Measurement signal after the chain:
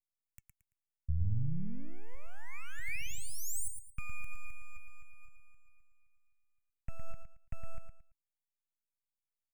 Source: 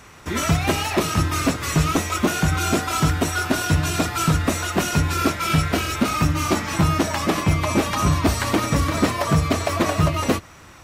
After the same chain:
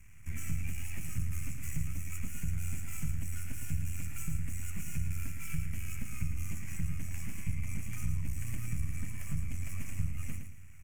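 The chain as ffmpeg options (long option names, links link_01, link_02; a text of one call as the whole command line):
ffmpeg -i in.wav -filter_complex "[0:a]acrossover=split=300|3000[link_01][link_02][link_03];[link_02]acompressor=threshold=-37dB:ratio=1.5[link_04];[link_01][link_04][link_03]amix=inputs=3:normalize=0,flanger=delay=0.9:depth=1.5:regen=85:speed=1.1:shape=triangular,aeval=exprs='max(val(0),0)':channel_layout=same,equalizer=frequency=1200:width=0.35:gain=-12,acompressor=threshold=-34dB:ratio=3,firequalizer=gain_entry='entry(110,0);entry(380,-23);entry(2300,2);entry(3800,-29);entry(6800,-7)':delay=0.05:min_phase=1,asplit=2[link_05][link_06];[link_06]aecho=0:1:112|224|336:0.447|0.125|0.035[link_07];[link_05][link_07]amix=inputs=2:normalize=0,volume=5dB" out.wav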